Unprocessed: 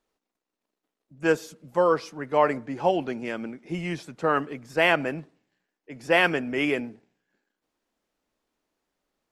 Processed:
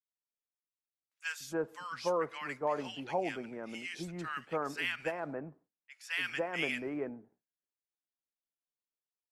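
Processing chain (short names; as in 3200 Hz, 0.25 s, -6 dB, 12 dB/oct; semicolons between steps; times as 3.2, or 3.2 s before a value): gate with hold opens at -48 dBFS; tilt shelf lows -4.5 dB; limiter -13 dBFS, peak gain reduction 8.5 dB; bands offset in time highs, lows 0.29 s, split 1300 Hz; gain -7 dB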